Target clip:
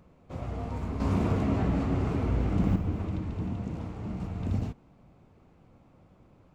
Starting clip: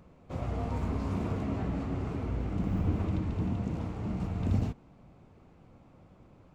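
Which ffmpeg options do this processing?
-filter_complex "[0:a]asettb=1/sr,asplit=3[a][b][c];[a]atrim=end=1.004[d];[b]atrim=start=1:end=2.76,asetpts=PTS-STARTPTS,afade=t=in:d=0.004:c=qsin,afade=t=out:st=1.756:d=0.004:c=qsin,acontrast=90[e];[c]atrim=start=2.756[f];[d][e]acrossfade=d=0.004:c1=hsin:c2=qsin[g];[g][f]acrossfade=d=0.004:c1=qsin:c2=hsin,volume=-1.5dB"

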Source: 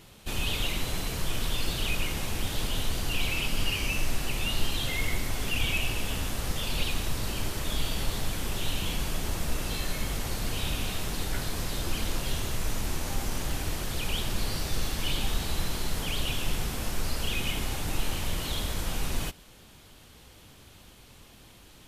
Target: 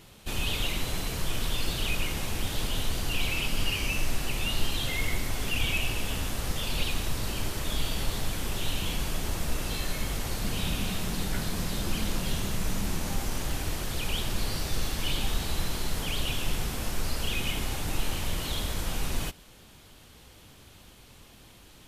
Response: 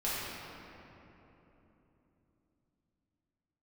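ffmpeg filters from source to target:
-filter_complex "[0:a]asettb=1/sr,asplit=3[a][b][c];[a]atrim=end=10.444[d];[b]atrim=start=10.44:end=13.16,asetpts=PTS-STARTPTS,afade=t=in:d=0.004:c=qsin,afade=t=out:st=2.716:d=0.004:c=qsin,equalizer=f=190:w=3.1:g=9[e];[c]atrim=start=13.156[f];[d][e]acrossfade=d=0.004:c1=hsin:c2=qsin[g];[g][f]acrossfade=d=0.004:c1=qsin:c2=hsin"

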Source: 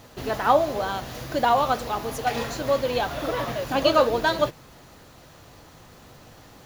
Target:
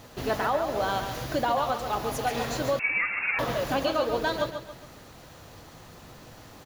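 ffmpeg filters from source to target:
-filter_complex "[0:a]alimiter=limit=-17dB:level=0:latency=1:release=301,aecho=1:1:138|276|414|552:0.398|0.155|0.0606|0.0236,asettb=1/sr,asplit=3[a][b][c];[a]atrim=end=2.794[d];[b]atrim=start=2.79:end=3.39,asetpts=PTS-STARTPTS,afade=t=in:d=0.004:c=qsin,afade=t=out:st=0.596:d=0.004:c=qsin,lowpass=f=2.4k:t=q:w=0.5098,lowpass=f=2.4k:t=q:w=0.6013,lowpass=f=2.4k:t=q:w=0.9,lowpass=f=2.4k:t=q:w=2.563,afreqshift=-2800[e];[c]atrim=start=3.386[f];[d][e]acrossfade=d=0.004:c1=hsin:c2=qsin[g];[g][f]acrossfade=d=0.004:c1=qsin:c2=hsin"

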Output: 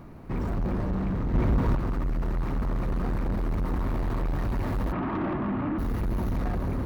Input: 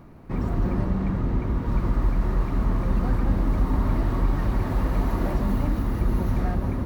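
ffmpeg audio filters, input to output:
-filter_complex "[0:a]asplit=3[a][b][c];[a]afade=t=out:st=4.91:d=0.02[d];[b]highpass=130,equalizer=f=320:t=q:w=4:g=7,equalizer=f=490:t=q:w=4:g=-8,equalizer=f=1.2k:t=q:w=4:g=5,lowpass=f=2.4k:w=0.5412,lowpass=f=2.4k:w=1.3066,afade=t=in:st=4.91:d=0.02,afade=t=out:st=5.78:d=0.02[e];[c]afade=t=in:st=5.78:d=0.02[f];[d][e][f]amix=inputs=3:normalize=0,asoftclip=type=tanh:threshold=-26dB,asplit=3[g][h][i];[g]afade=t=out:st=1.33:d=0.02[j];[h]acontrast=36,afade=t=in:st=1.33:d=0.02,afade=t=out:st=1.74:d=0.02[k];[i]afade=t=in:st=1.74:d=0.02[l];[j][k][l]amix=inputs=3:normalize=0,volume=2dB"

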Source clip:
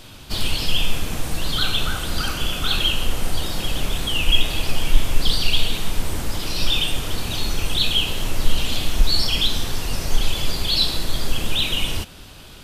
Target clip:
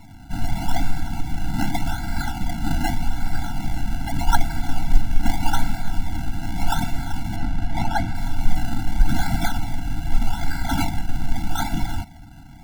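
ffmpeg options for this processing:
-filter_complex "[0:a]acrusher=samples=27:mix=1:aa=0.000001:lfo=1:lforange=27:lforate=0.83,asettb=1/sr,asplit=3[a][b][c];[a]atrim=end=7.364[d];[b]atrim=start=7.36:end=8.15,asetpts=PTS-STARTPTS,afade=t=in:d=0.004:c=qsin,afade=t=out:st=0.786:d=0.004:c=qsin,lowpass=f=3.3k:p=1[e];[c]atrim=start=8.146[f];[d][e]acrossfade=d=0.004:c1=hsin:c2=qsin[g];[g][f]acrossfade=d=0.004:c1=qsin:c2=hsin,afftfilt=real='re*eq(mod(floor(b*sr/1024/330),2),0)':imag='im*eq(mod(floor(b*sr/1024/330),2),0)':win_size=1024:overlap=0.75"

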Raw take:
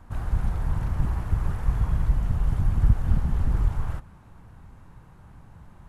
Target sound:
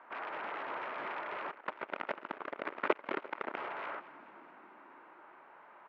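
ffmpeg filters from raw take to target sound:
-filter_complex "[0:a]asplit=2[a][b];[b]aeval=exprs='(mod(15.8*val(0)+1,2)-1)/15.8':c=same,volume=-11dB[c];[a][c]amix=inputs=2:normalize=0,asplit=8[d][e][f][g][h][i][j][k];[e]adelay=216,afreqshift=-55,volume=-17dB[l];[f]adelay=432,afreqshift=-110,volume=-20.7dB[m];[g]adelay=648,afreqshift=-165,volume=-24.5dB[n];[h]adelay=864,afreqshift=-220,volume=-28.2dB[o];[i]adelay=1080,afreqshift=-275,volume=-32dB[p];[j]adelay=1296,afreqshift=-330,volume=-35.7dB[q];[k]adelay=1512,afreqshift=-385,volume=-39.5dB[r];[d][l][m][n][o][p][q][r]amix=inputs=8:normalize=0,asettb=1/sr,asplit=3[s][t][u];[s]atrim=end=1.514[v];[t]atrim=start=1.51:end=3.57,asetpts=PTS-STARTPTS,afade=t=in:d=0.004:c=qsin,afade=t=out:st=2.056:d=0.004:c=qsin,aeval=exprs='0.422*(cos(1*acos(clip(val(0)/0.422,-1,1)))-cos(1*PI/2))+0.0531*(cos(2*acos(clip(val(0)/0.422,-1,1)))-cos(2*PI/2))+0.133*(cos(3*acos(clip(val(0)/0.422,-1,1)))-cos(3*PI/2))+0.168*(cos(6*acos(clip(val(0)/0.422,-1,1)))-cos(6*PI/2))+0.119*(cos(8*acos(clip(val(0)/0.422,-1,1)))-cos(8*PI/2))':c=same[w];[u]atrim=start=3.566[x];[v][w]acrossfade=d=0.004:c1=hsin:c2=qsin[y];[y][x]acrossfade=d=0.004:c1=qsin:c2=hsin,highpass=f=490:w=0.5412,highpass=f=490:w=1.3066,equalizer=f=500:t=q:w=4:g=-7,equalizer=f=760:t=q:w=4:g=-7,equalizer=f=1.1k:t=q:w=4:g=-4,equalizer=f=1.7k:t=q:w=4:g=-4,lowpass=f=2.3k:w=0.5412,lowpass=f=2.3k:w=1.3066,volume=5.5dB"

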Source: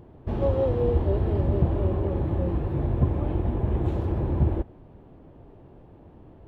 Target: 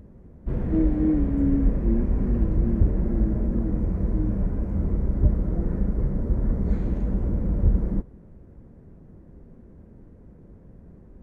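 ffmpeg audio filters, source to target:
-af "asetrate=25442,aresample=44100,volume=2dB"

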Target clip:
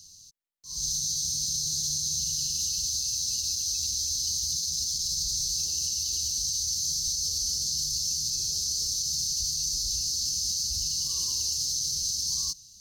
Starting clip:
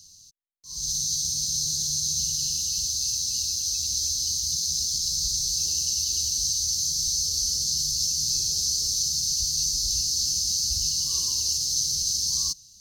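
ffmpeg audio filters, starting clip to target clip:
-af "alimiter=limit=-20dB:level=0:latency=1:release=39"

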